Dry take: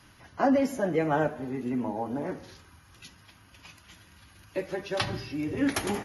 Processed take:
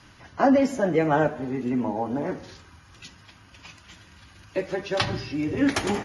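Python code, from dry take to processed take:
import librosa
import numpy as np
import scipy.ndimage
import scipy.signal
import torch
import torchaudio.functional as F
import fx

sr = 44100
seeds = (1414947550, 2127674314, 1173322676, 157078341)

y = scipy.signal.sosfilt(scipy.signal.butter(4, 8700.0, 'lowpass', fs=sr, output='sos'), x)
y = y * 10.0 ** (4.5 / 20.0)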